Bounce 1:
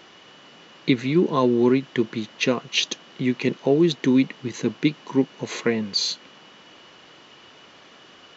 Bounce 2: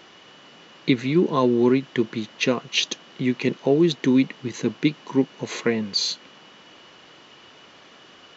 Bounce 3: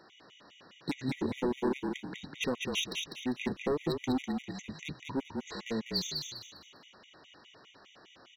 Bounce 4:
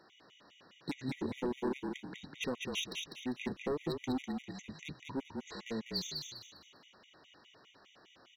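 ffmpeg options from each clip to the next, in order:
-af anull
-filter_complex "[0:a]asoftclip=type=hard:threshold=0.112,asplit=2[s0][s1];[s1]asplit=4[s2][s3][s4][s5];[s2]adelay=199,afreqshift=-34,volume=0.631[s6];[s3]adelay=398,afreqshift=-68,volume=0.209[s7];[s4]adelay=597,afreqshift=-102,volume=0.0684[s8];[s5]adelay=796,afreqshift=-136,volume=0.0226[s9];[s6][s7][s8][s9]amix=inputs=4:normalize=0[s10];[s0][s10]amix=inputs=2:normalize=0,afftfilt=real='re*gt(sin(2*PI*4.9*pts/sr)*(1-2*mod(floor(b*sr/1024/1900),2)),0)':imag='im*gt(sin(2*PI*4.9*pts/sr)*(1-2*mod(floor(b*sr/1024/1900),2)),0)':win_size=1024:overlap=0.75,volume=0.422"
-af "asoftclip=type=hard:threshold=0.0891,volume=0.596"

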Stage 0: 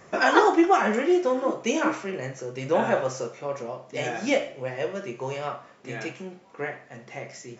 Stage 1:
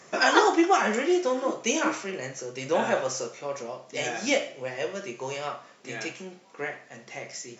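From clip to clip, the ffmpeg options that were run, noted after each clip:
-af "highpass=150,equalizer=f=6100:t=o:w=2.3:g=9,volume=0.75"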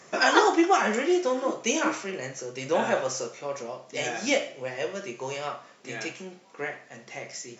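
-af anull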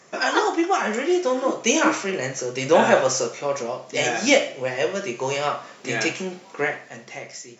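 -af "dynaudnorm=f=240:g=9:m=4.47,volume=0.891"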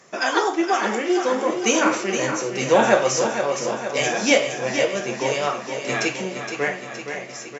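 -af "aecho=1:1:467|934|1401|1868|2335|2802|3269:0.398|0.235|0.139|0.0818|0.0482|0.0285|0.0168"

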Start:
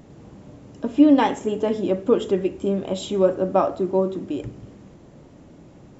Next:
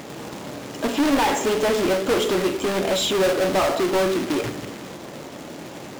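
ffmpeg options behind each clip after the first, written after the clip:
-filter_complex "[0:a]acrusher=bits=3:mode=log:mix=0:aa=0.000001,asplit=2[s0][s1];[s1]highpass=f=720:p=1,volume=35.5,asoftclip=type=tanh:threshold=0.473[s2];[s0][s2]amix=inputs=2:normalize=0,lowpass=f=6600:p=1,volume=0.501,bandreject=f=99.33:t=h:w=4,bandreject=f=198.66:t=h:w=4,bandreject=f=297.99:t=h:w=4,bandreject=f=397.32:t=h:w=4,bandreject=f=496.65:t=h:w=4,bandreject=f=595.98:t=h:w=4,bandreject=f=695.31:t=h:w=4,bandreject=f=794.64:t=h:w=4,bandreject=f=893.97:t=h:w=4,bandreject=f=993.3:t=h:w=4,bandreject=f=1092.63:t=h:w=4,bandreject=f=1191.96:t=h:w=4,bandreject=f=1291.29:t=h:w=4,bandreject=f=1390.62:t=h:w=4,bandreject=f=1489.95:t=h:w=4,bandreject=f=1589.28:t=h:w=4,bandreject=f=1688.61:t=h:w=4,bandreject=f=1787.94:t=h:w=4,bandreject=f=1887.27:t=h:w=4,bandreject=f=1986.6:t=h:w=4,bandreject=f=2085.93:t=h:w=4,bandreject=f=2185.26:t=h:w=4,bandreject=f=2284.59:t=h:w=4,bandreject=f=2383.92:t=h:w=4,bandreject=f=2483.25:t=h:w=4,bandreject=f=2582.58:t=h:w=4,bandreject=f=2681.91:t=h:w=4,bandreject=f=2781.24:t=h:w=4,bandreject=f=2880.57:t=h:w=4,bandreject=f=2979.9:t=h:w=4,bandreject=f=3079.23:t=h:w=4,bandreject=f=3178.56:t=h:w=4,bandreject=f=3277.89:t=h:w=4,volume=0.473"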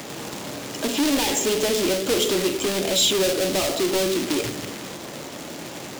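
-filter_complex "[0:a]highshelf=f=2400:g=7.5,acrossover=split=270|560|2400[s0][s1][s2][s3];[s0]asoftclip=type=tanh:threshold=0.0422[s4];[s2]acompressor=threshold=0.0178:ratio=6[s5];[s4][s1][s5][s3]amix=inputs=4:normalize=0"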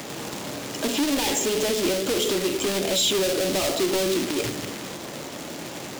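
-af "alimiter=limit=0.211:level=0:latency=1:release=62"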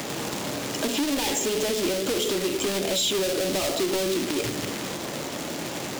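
-af "acompressor=threshold=0.0316:ratio=2,volume=1.5"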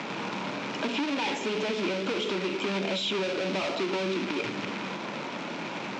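-af "highpass=150,equalizer=f=200:t=q:w=4:g=8,equalizer=f=960:t=q:w=4:g=8,equalizer=f=1400:t=q:w=4:g=6,equalizer=f=2400:t=q:w=4:g=8,equalizer=f=4700:t=q:w=4:g=-3,lowpass=f=5000:w=0.5412,lowpass=f=5000:w=1.3066,volume=0.562"

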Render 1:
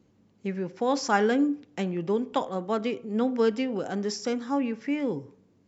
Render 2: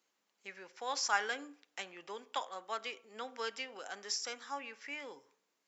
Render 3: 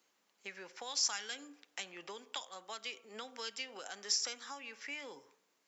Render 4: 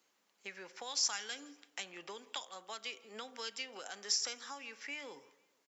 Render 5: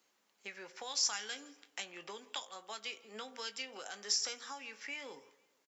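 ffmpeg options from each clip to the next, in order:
-af "highpass=1100,highshelf=f=6300:g=6,volume=0.668"
-filter_complex "[0:a]acrossover=split=160|3000[s0][s1][s2];[s1]acompressor=threshold=0.00316:ratio=6[s3];[s0][s3][s2]amix=inputs=3:normalize=0,volume=1.68"
-af "aecho=1:1:164|328|492:0.0668|0.0334|0.0167"
-filter_complex "[0:a]asplit=2[s0][s1];[s1]adelay=19,volume=0.299[s2];[s0][s2]amix=inputs=2:normalize=0"

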